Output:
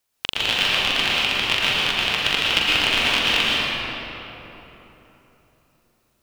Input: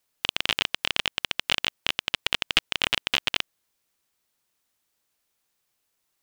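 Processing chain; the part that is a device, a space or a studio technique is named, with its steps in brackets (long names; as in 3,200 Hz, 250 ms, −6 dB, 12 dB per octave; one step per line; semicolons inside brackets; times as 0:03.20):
tunnel (flutter between parallel walls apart 7.4 metres, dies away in 0.32 s; convolution reverb RT60 3.6 s, pre-delay 104 ms, DRR −7 dB)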